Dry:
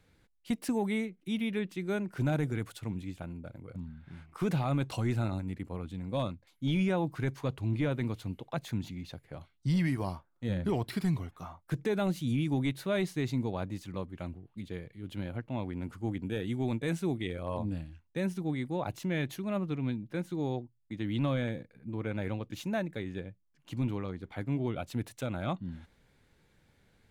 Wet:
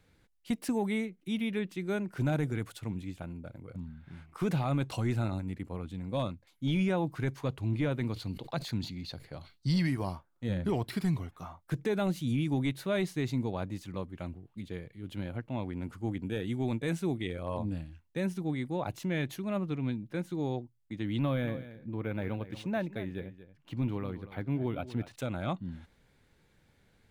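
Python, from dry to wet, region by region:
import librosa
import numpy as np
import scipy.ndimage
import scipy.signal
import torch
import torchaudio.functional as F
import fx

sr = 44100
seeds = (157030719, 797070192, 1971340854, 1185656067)

y = fx.chain(x, sr, fx.peak_eq(hz=4400.0, db=12.5, octaves=0.36),
    fx.sustainer(db_per_s=140.0), at=(8.13, 9.87))
y = fx.chain(y, sr, fx.peak_eq(hz=10000.0, db=-12.5, octaves=0.77),
    fx.echo_single(ms=233, db=-14.5),
    fx.resample_linear(factor=3), at=(21.21, 25.16))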